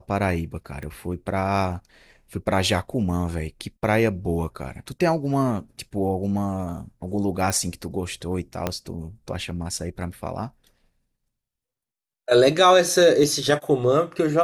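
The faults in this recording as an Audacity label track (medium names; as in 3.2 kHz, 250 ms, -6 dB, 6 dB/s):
0.830000	0.830000	pop -23 dBFS
7.500000	7.500000	pop
8.670000	8.670000	pop -9 dBFS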